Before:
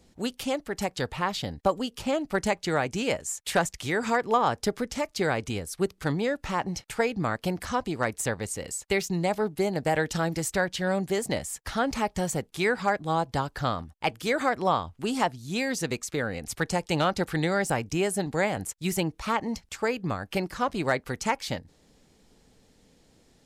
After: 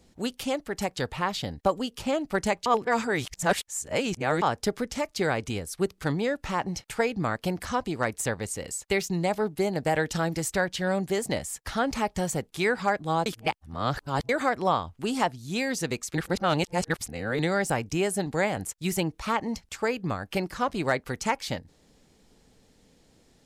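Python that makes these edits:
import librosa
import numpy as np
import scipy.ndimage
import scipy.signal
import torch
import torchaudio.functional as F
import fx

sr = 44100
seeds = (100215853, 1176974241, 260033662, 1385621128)

y = fx.edit(x, sr, fx.reverse_span(start_s=2.66, length_s=1.76),
    fx.reverse_span(start_s=13.26, length_s=1.03),
    fx.reverse_span(start_s=16.15, length_s=1.24), tone=tone)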